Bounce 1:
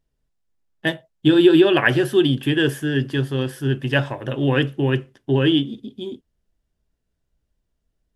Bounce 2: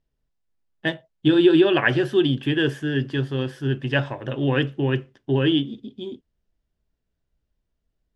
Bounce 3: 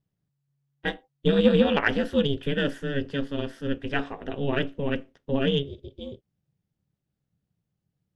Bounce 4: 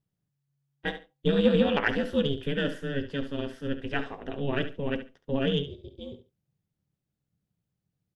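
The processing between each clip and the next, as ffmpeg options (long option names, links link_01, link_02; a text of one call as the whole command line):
ffmpeg -i in.wav -af "lowpass=5800,volume=-2.5dB" out.wav
ffmpeg -i in.wav -af "aeval=exprs='val(0)*sin(2*PI*140*n/s)':channel_layout=same,aeval=exprs='0.473*(cos(1*acos(clip(val(0)/0.473,-1,1)))-cos(1*PI/2))+0.0266*(cos(3*acos(clip(val(0)/0.473,-1,1)))-cos(3*PI/2))':channel_layout=same" out.wav
ffmpeg -i in.wav -af "aecho=1:1:70|140:0.266|0.0479,volume=-3dB" out.wav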